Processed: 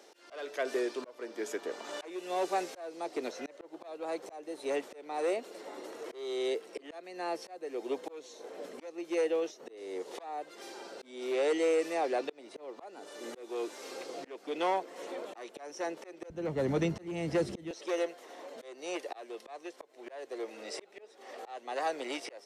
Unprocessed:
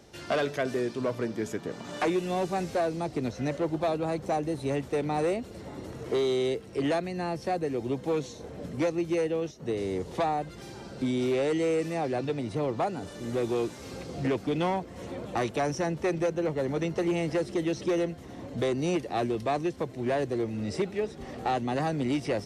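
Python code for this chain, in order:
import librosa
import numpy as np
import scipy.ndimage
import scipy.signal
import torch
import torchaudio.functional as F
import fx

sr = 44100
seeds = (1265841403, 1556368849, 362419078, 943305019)

y = fx.highpass(x, sr, hz=fx.steps((0.0, 360.0), (16.3, 59.0), (17.71, 440.0)), slope=24)
y = fx.auto_swell(y, sr, attack_ms=456.0)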